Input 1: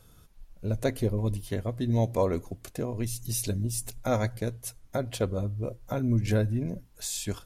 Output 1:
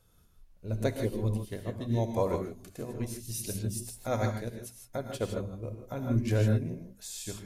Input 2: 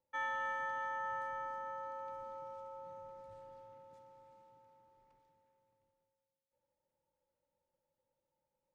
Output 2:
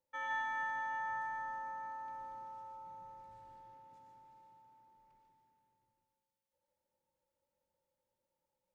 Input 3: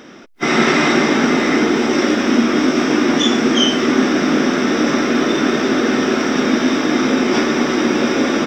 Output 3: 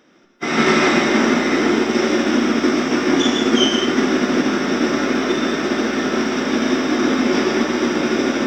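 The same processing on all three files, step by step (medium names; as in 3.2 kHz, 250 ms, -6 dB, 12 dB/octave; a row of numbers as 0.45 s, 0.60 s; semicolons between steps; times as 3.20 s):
hum notches 50/100/150/200/250/300 Hz; gated-style reverb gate 180 ms rising, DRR 2.5 dB; upward expansion 1.5:1, over -35 dBFS; trim -2 dB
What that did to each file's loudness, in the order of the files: -2.5 LU, +0.5 LU, -2.0 LU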